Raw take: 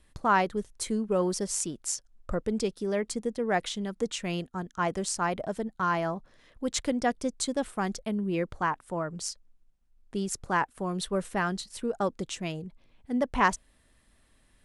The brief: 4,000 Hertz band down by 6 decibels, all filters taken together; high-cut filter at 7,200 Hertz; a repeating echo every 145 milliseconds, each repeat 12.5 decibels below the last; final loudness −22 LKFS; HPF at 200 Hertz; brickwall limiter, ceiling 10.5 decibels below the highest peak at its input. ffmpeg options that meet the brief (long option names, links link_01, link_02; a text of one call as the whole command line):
ffmpeg -i in.wav -af "highpass=200,lowpass=7200,equalizer=frequency=4000:width_type=o:gain=-7.5,alimiter=limit=-19.5dB:level=0:latency=1,aecho=1:1:145|290|435:0.237|0.0569|0.0137,volume=11.5dB" out.wav